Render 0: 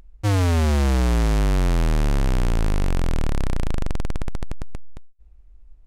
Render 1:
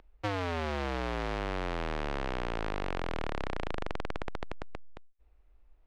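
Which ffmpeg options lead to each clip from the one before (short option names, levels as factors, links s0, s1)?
-filter_complex "[0:a]acrossover=split=340 4200:gain=0.2 1 0.0794[s0][s1][s2];[s0][s1][s2]amix=inputs=3:normalize=0,acompressor=threshold=0.0355:ratio=6"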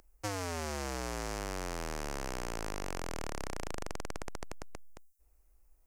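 -af "aexciter=amount=7.8:drive=7.4:freq=5300,volume=0.596"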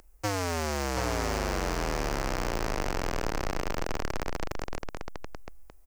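-filter_complex "[0:a]acrossover=split=5900[s0][s1];[s0]aecho=1:1:729:0.596[s2];[s1]aeval=exprs='0.0112*(abs(mod(val(0)/0.0112+3,4)-2)-1)':c=same[s3];[s2][s3]amix=inputs=2:normalize=0,volume=2.24"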